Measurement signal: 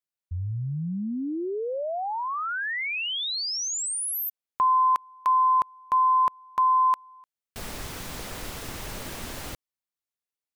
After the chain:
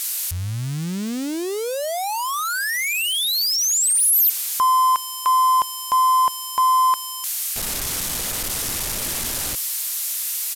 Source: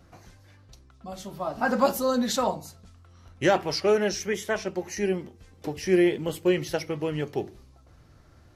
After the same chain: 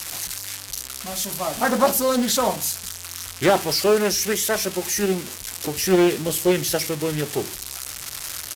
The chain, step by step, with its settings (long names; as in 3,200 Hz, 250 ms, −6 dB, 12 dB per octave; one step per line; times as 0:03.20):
spike at every zero crossing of −19.5 dBFS
downsampling to 32,000 Hz
highs frequency-modulated by the lows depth 0.33 ms
level +4 dB